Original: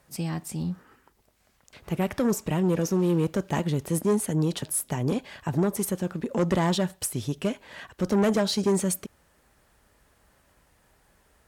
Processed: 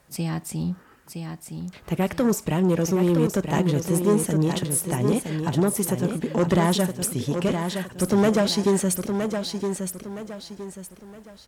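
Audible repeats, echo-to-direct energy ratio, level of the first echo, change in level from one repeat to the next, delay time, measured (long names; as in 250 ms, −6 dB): 4, −6.0 dB, −6.5 dB, −9.5 dB, 966 ms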